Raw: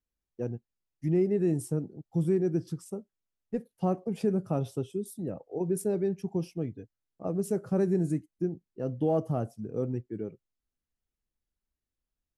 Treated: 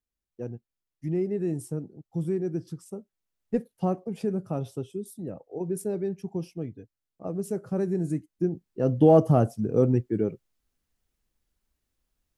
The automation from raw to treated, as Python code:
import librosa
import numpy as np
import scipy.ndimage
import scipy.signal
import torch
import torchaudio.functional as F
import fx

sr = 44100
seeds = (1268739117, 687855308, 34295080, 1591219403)

y = fx.gain(x, sr, db=fx.line((2.83, -2.0), (3.56, 6.0), (4.06, -1.0), (7.96, -1.0), (9.0, 10.0)))